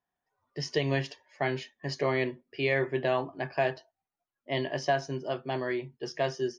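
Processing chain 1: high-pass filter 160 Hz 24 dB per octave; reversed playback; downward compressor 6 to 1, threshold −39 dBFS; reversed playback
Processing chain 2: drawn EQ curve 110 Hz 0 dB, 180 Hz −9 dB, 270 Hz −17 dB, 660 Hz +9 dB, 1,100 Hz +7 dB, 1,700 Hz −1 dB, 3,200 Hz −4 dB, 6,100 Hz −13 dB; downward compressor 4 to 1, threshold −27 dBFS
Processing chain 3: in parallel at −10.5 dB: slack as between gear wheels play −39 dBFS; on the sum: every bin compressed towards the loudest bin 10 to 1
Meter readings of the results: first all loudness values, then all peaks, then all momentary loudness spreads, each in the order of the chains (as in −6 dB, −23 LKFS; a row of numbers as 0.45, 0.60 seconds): −43.0, −33.5, −31.5 LKFS; −27.5, −16.5, −13.0 dBFS; 4, 10, 4 LU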